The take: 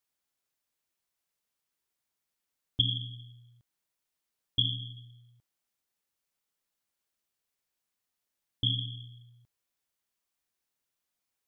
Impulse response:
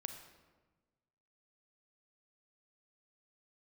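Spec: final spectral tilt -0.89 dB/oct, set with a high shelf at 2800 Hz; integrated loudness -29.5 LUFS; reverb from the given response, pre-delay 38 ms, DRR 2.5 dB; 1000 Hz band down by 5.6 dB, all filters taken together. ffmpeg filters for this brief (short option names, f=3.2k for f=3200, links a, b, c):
-filter_complex "[0:a]equalizer=f=1k:t=o:g=-7.5,highshelf=f=2.8k:g=-3.5,asplit=2[a][b];[1:a]atrim=start_sample=2205,adelay=38[c];[b][c]afir=irnorm=-1:irlink=0,volume=0dB[d];[a][d]amix=inputs=2:normalize=0,volume=2.5dB"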